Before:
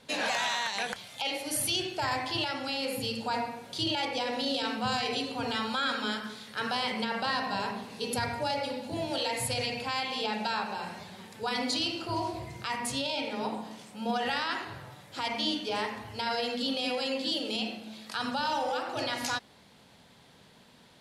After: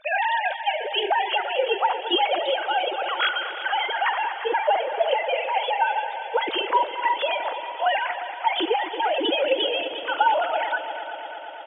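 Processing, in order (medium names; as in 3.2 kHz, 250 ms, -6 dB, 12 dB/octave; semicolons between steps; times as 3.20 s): formants replaced by sine waves; multi-head delay 209 ms, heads second and third, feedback 72%, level -13 dB; tempo 1.8×; trim +8.5 dB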